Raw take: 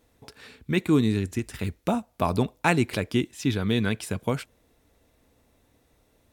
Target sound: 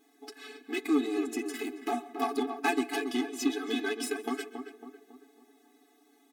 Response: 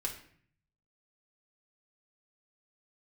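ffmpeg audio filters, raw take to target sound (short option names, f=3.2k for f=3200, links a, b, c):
-filter_complex "[0:a]highpass=44,aecho=1:1:7:0.66,acompressor=threshold=-28dB:ratio=2,aeval=exprs='clip(val(0),-1,0.0501)':c=same,aeval=exprs='0.211*(cos(1*acos(clip(val(0)/0.211,-1,1)))-cos(1*PI/2))+0.0422*(cos(2*acos(clip(val(0)/0.211,-1,1)))-cos(2*PI/2))+0.0237*(cos(3*acos(clip(val(0)/0.211,-1,1)))-cos(3*PI/2))+0.0106*(cos(6*acos(clip(val(0)/0.211,-1,1)))-cos(6*PI/2))':c=same,asplit=2[a][b];[b]adelay=276,lowpass=f=1.4k:p=1,volume=-7dB,asplit=2[c][d];[d]adelay=276,lowpass=f=1.4k:p=1,volume=0.49,asplit=2[e][f];[f]adelay=276,lowpass=f=1.4k:p=1,volume=0.49,asplit=2[g][h];[h]adelay=276,lowpass=f=1.4k:p=1,volume=0.49,asplit=2[i][j];[j]adelay=276,lowpass=f=1.4k:p=1,volume=0.49,asplit=2[k][l];[l]adelay=276,lowpass=f=1.4k:p=1,volume=0.49[m];[a][c][e][g][i][k][m]amix=inputs=7:normalize=0,asplit=2[n][o];[1:a]atrim=start_sample=2205,adelay=129[p];[o][p]afir=irnorm=-1:irlink=0,volume=-20.5dB[q];[n][q]amix=inputs=2:normalize=0,afftfilt=real='re*eq(mod(floor(b*sr/1024/220),2),1)':imag='im*eq(mod(floor(b*sr/1024/220),2),1)':win_size=1024:overlap=0.75,volume=6dB"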